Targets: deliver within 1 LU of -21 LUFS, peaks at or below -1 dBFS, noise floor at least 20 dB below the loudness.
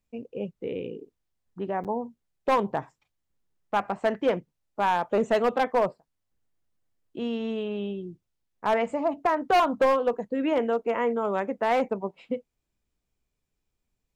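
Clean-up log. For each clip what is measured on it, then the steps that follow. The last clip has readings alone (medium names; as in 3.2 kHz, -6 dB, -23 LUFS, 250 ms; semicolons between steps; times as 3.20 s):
clipped samples 1.0%; clipping level -16.5 dBFS; dropouts 1; longest dropout 7.7 ms; loudness -27.0 LUFS; peak level -16.5 dBFS; loudness target -21.0 LUFS
-> clip repair -16.5 dBFS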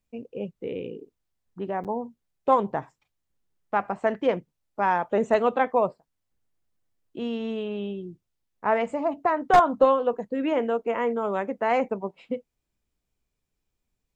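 clipped samples 0.0%; dropouts 1; longest dropout 7.7 ms
-> interpolate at 1.84 s, 7.7 ms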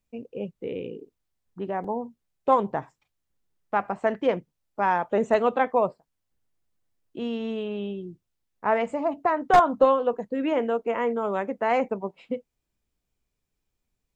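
dropouts 0; loudness -26.0 LUFS; peak level -7.5 dBFS; loudness target -21.0 LUFS
-> trim +5 dB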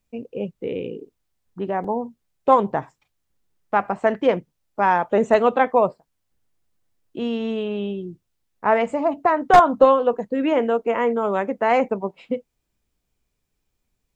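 loudness -21.0 LUFS; peak level -2.5 dBFS; noise floor -76 dBFS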